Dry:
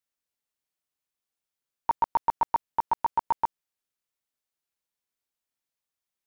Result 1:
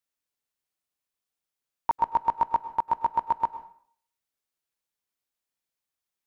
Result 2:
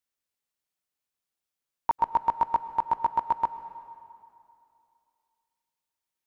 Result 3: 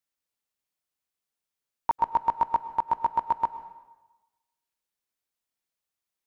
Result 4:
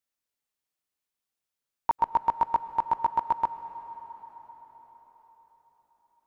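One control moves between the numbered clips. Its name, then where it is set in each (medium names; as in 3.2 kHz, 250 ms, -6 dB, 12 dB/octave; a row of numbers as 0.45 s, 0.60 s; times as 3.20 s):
plate-style reverb, RT60: 0.55 s, 2.5 s, 1.1 s, 5.3 s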